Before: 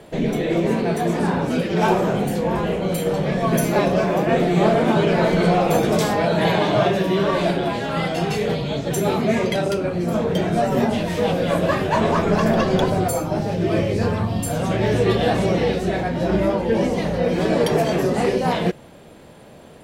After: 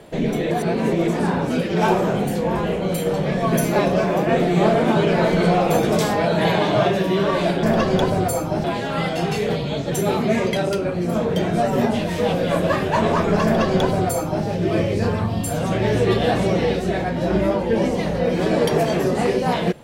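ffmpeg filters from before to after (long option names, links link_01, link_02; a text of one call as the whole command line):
ffmpeg -i in.wav -filter_complex "[0:a]asplit=5[link_01][link_02][link_03][link_04][link_05];[link_01]atrim=end=0.512[link_06];[link_02]atrim=start=0.508:end=1.082,asetpts=PTS-STARTPTS,areverse[link_07];[link_03]atrim=start=1.078:end=7.632[link_08];[link_04]atrim=start=12.428:end=13.442[link_09];[link_05]atrim=start=7.628[link_10];[link_06][link_07]acrossfade=duration=0.004:curve1=hsin:curve2=hsin[link_11];[link_11][link_08]acrossfade=duration=0.004:curve1=hsin:curve2=hsin[link_12];[link_12][link_09]acrossfade=duration=0.004:curve1=hsin:curve2=hsin[link_13];[link_13][link_10]acrossfade=duration=0.004:curve1=hsin:curve2=hsin" out.wav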